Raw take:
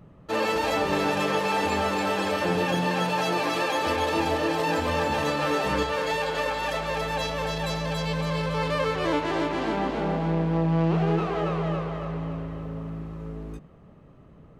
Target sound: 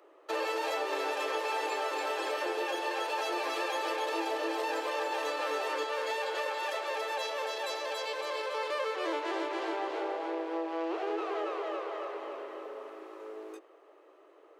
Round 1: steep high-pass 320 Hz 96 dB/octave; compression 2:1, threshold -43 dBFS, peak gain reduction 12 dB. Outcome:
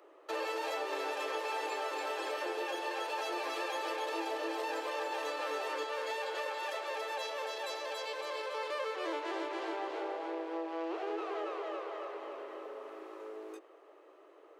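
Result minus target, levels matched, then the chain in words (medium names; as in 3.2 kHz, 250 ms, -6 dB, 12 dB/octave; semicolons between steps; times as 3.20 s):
compression: peak gain reduction +4 dB
steep high-pass 320 Hz 96 dB/octave; compression 2:1, threshold -35.5 dBFS, peak gain reduction 8 dB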